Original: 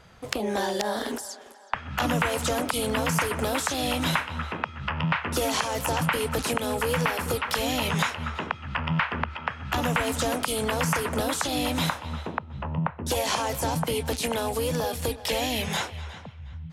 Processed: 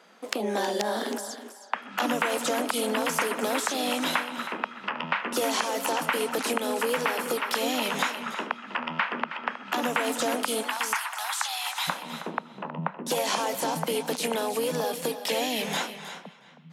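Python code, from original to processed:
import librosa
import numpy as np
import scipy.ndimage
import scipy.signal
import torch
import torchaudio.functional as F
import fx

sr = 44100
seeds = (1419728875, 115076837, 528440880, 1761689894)

y = fx.ellip_highpass(x, sr, hz=fx.steps((0.0, 210.0), (10.61, 800.0), (11.87, 180.0)), order=4, stop_db=50)
y = y + 10.0 ** (-12.0 / 20.0) * np.pad(y, (int(318 * sr / 1000.0), 0))[:len(y)]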